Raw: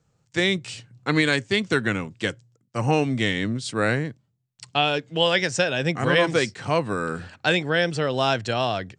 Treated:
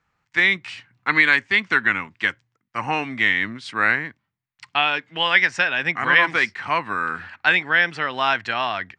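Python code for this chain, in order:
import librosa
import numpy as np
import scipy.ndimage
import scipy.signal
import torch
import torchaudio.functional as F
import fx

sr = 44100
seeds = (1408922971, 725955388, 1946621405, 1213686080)

y = fx.graphic_eq(x, sr, hz=(125, 500, 1000, 2000, 8000), db=(-11, -9, 8, 12, -11))
y = F.gain(torch.from_numpy(y), -2.5).numpy()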